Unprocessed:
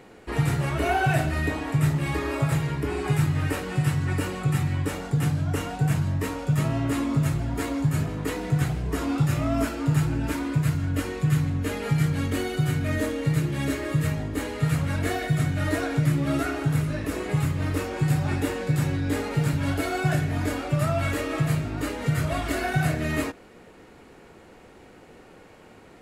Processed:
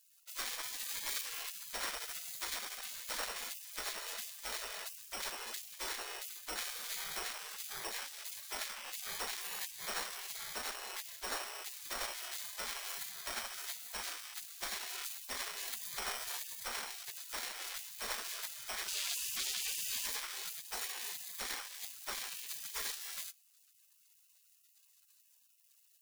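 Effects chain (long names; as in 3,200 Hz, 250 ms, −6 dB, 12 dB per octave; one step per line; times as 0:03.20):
decimation without filtering 16×
0:18.88–0:20.06: mid-hump overdrive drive 34 dB, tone 5,000 Hz, clips at −12.5 dBFS
gate on every frequency bin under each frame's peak −30 dB weak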